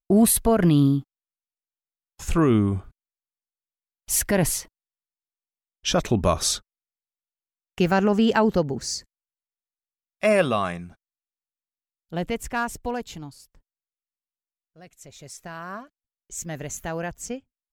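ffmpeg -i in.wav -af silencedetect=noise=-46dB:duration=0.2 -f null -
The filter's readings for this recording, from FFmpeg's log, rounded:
silence_start: 1.03
silence_end: 2.19 | silence_duration: 1.16
silence_start: 2.90
silence_end: 4.08 | silence_duration: 1.18
silence_start: 4.66
silence_end: 5.84 | silence_duration: 1.18
silence_start: 6.59
silence_end: 7.78 | silence_duration: 1.19
silence_start: 9.04
silence_end: 10.22 | silence_duration: 1.17
silence_start: 10.93
silence_end: 12.10 | silence_duration: 1.17
silence_start: 13.57
silence_end: 14.77 | silence_duration: 1.20
silence_start: 15.86
silence_end: 16.30 | silence_duration: 0.44
silence_start: 17.39
silence_end: 17.72 | silence_duration: 0.33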